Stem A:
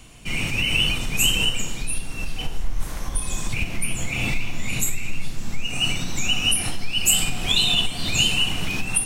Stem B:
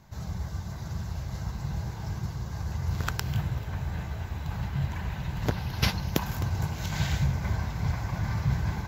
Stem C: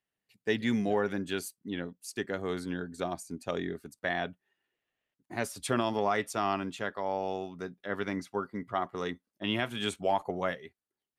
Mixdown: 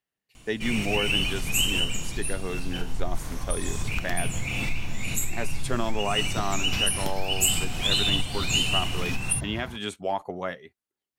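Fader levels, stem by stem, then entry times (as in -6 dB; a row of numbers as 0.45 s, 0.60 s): -4.5 dB, -8.0 dB, 0.0 dB; 0.35 s, 0.90 s, 0.00 s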